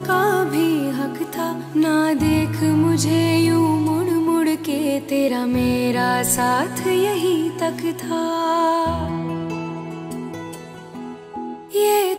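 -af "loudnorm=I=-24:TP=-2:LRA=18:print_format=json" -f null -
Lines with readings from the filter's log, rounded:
"input_i" : "-20.1",
"input_tp" : "-6.5",
"input_lra" : "6.0",
"input_thresh" : "-30.9",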